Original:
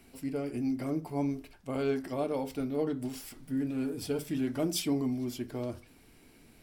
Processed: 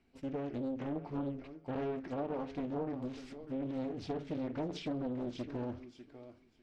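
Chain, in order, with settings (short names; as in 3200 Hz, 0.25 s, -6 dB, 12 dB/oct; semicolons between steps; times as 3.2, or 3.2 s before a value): gate -48 dBFS, range -11 dB; compressor 4:1, threshold -31 dBFS, peak gain reduction 5.5 dB; air absorption 140 m; thinning echo 0.598 s, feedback 16%, high-pass 210 Hz, level -11.5 dB; treble ducked by the level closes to 1900 Hz, closed at -29.5 dBFS; high shelf 11000 Hz +4.5 dB; Doppler distortion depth 0.77 ms; gain -2 dB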